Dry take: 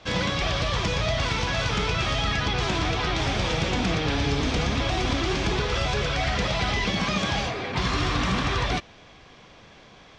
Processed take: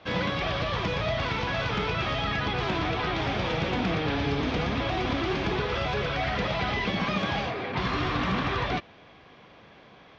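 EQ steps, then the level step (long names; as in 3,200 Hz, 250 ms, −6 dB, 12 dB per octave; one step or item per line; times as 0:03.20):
high-pass filter 130 Hz 6 dB per octave
high-frequency loss of the air 220 metres
0.0 dB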